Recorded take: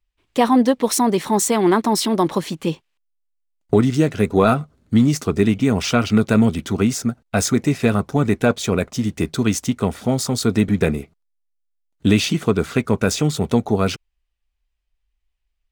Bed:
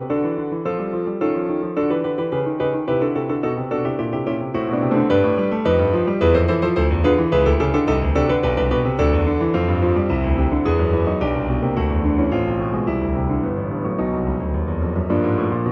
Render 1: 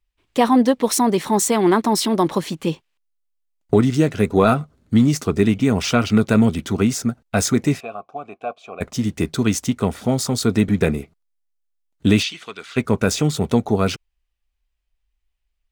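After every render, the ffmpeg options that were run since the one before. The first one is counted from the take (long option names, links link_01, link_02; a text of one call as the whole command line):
ffmpeg -i in.wav -filter_complex "[0:a]asplit=3[link_01][link_02][link_03];[link_01]afade=type=out:start_time=7.79:duration=0.02[link_04];[link_02]asplit=3[link_05][link_06][link_07];[link_05]bandpass=frequency=730:width_type=q:width=8,volume=0dB[link_08];[link_06]bandpass=frequency=1090:width_type=q:width=8,volume=-6dB[link_09];[link_07]bandpass=frequency=2440:width_type=q:width=8,volume=-9dB[link_10];[link_08][link_09][link_10]amix=inputs=3:normalize=0,afade=type=in:start_time=7.79:duration=0.02,afade=type=out:start_time=8.8:duration=0.02[link_11];[link_03]afade=type=in:start_time=8.8:duration=0.02[link_12];[link_04][link_11][link_12]amix=inputs=3:normalize=0,asplit=3[link_13][link_14][link_15];[link_13]afade=type=out:start_time=12.22:duration=0.02[link_16];[link_14]bandpass=frequency=3200:width_type=q:width=1.1,afade=type=in:start_time=12.22:duration=0.02,afade=type=out:start_time=12.76:duration=0.02[link_17];[link_15]afade=type=in:start_time=12.76:duration=0.02[link_18];[link_16][link_17][link_18]amix=inputs=3:normalize=0" out.wav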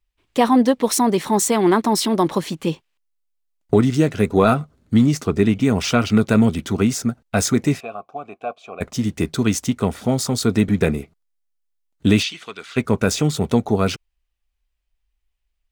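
ffmpeg -i in.wav -filter_complex "[0:a]asettb=1/sr,asplit=3[link_01][link_02][link_03];[link_01]atrim=end=5.064[link_04];[link_02]atrim=start=5.06:end=5.56,asetpts=PTS-STARTPTS,afade=type=in:duration=0.004:curve=qsin,afade=type=out:start_time=0.496:duration=0.004:curve=qsin,highshelf=frequency=5200:gain=-4.5[link_05];[link_03]atrim=start=5.556[link_06];[link_04][link_05]acrossfade=duration=0.004:curve1=hsin:curve2=qsin[link_07];[link_07][link_06]acrossfade=duration=0.004:curve1=qsin:curve2=hsin" out.wav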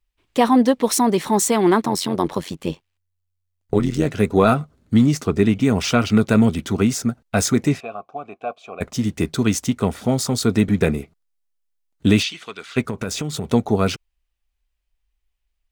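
ffmpeg -i in.wav -filter_complex "[0:a]asplit=3[link_01][link_02][link_03];[link_01]afade=type=out:start_time=1.84:duration=0.02[link_04];[link_02]tremolo=f=90:d=0.788,afade=type=in:start_time=1.84:duration=0.02,afade=type=out:start_time=4.05:duration=0.02[link_05];[link_03]afade=type=in:start_time=4.05:duration=0.02[link_06];[link_04][link_05][link_06]amix=inputs=3:normalize=0,asettb=1/sr,asplit=3[link_07][link_08][link_09];[link_07]atrim=end=7.684[link_10];[link_08]atrim=start=7.68:end=8.48,asetpts=PTS-STARTPTS,afade=type=in:duration=0.004:curve=qsin,afade=type=out:start_time=0.796:duration=0.004:curve=qsin,highshelf=frequency=10000:gain=-10[link_11];[link_09]atrim=start=8.476[link_12];[link_10][link_11]acrossfade=duration=0.004:curve1=hsin:curve2=qsin[link_13];[link_13][link_12]acrossfade=duration=0.004:curve1=qsin:curve2=hsin,asettb=1/sr,asplit=3[link_14][link_15][link_16];[link_14]atrim=end=12.874[link_17];[link_15]atrim=start=12.87:end=13.48,asetpts=PTS-STARTPTS,afade=type=in:duration=0.004:curve=qsin,afade=type=out:start_time=0.606:duration=0.004:curve=qsin,acompressor=threshold=-21dB:ratio=6:attack=3.2:release=140:knee=1:detection=peak[link_18];[link_16]atrim=start=13.476[link_19];[link_17][link_18]acrossfade=duration=0.004:curve1=hsin:curve2=qsin[link_20];[link_20][link_19]acrossfade=duration=0.004:curve1=qsin:curve2=hsin" out.wav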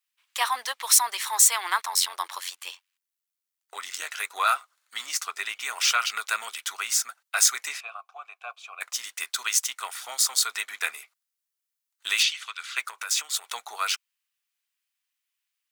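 ffmpeg -i in.wav -af "highpass=frequency=1100:width=0.5412,highpass=frequency=1100:width=1.3066,highshelf=frequency=6000:gain=7" out.wav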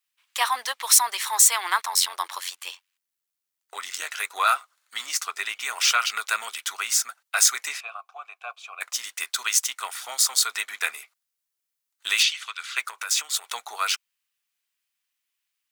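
ffmpeg -i in.wav -af "volume=2dB,alimiter=limit=-3dB:level=0:latency=1" out.wav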